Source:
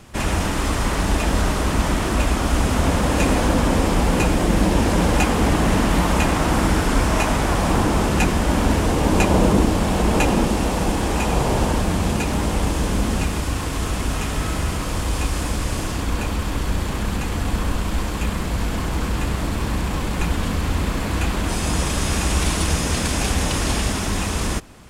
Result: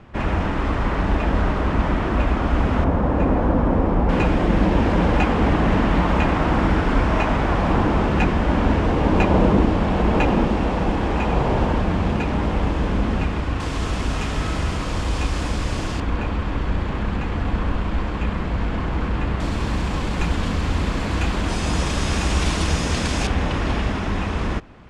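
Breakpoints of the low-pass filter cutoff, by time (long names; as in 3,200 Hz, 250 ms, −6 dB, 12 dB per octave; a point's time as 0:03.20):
2,200 Hz
from 0:02.84 1,200 Hz
from 0:04.09 2,700 Hz
from 0:13.60 5,400 Hz
from 0:16.00 2,600 Hz
from 0:19.40 5,800 Hz
from 0:23.27 2,600 Hz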